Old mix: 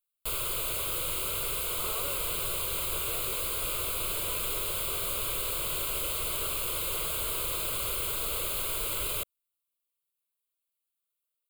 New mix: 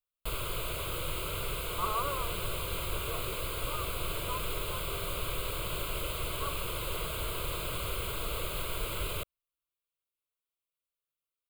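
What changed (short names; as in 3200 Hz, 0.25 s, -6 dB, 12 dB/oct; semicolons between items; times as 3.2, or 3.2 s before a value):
speech: add synth low-pass 1100 Hz, resonance Q 4.7; master: add tone controls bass +5 dB, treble -9 dB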